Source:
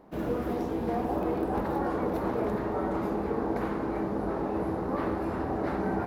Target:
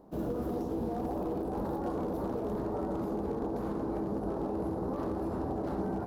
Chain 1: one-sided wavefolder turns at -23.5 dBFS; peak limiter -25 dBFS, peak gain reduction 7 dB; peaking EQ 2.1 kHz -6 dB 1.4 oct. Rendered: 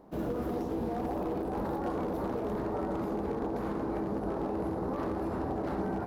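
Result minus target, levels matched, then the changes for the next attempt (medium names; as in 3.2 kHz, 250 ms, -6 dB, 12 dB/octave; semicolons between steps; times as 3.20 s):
2 kHz band +5.5 dB
change: peaking EQ 2.1 kHz -14.5 dB 1.4 oct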